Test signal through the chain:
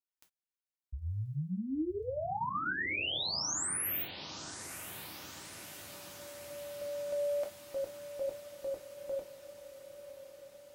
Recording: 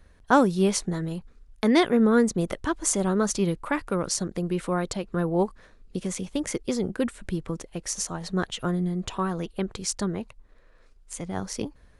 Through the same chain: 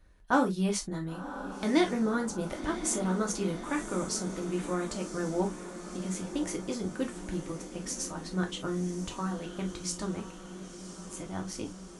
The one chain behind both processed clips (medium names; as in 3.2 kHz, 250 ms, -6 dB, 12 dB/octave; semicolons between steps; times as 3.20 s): band-stop 460 Hz, Q 12; on a send: echo that smears into a reverb 1038 ms, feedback 67%, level -11.5 dB; on the sum: gated-style reverb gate 80 ms falling, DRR 1.5 dB; trim -8 dB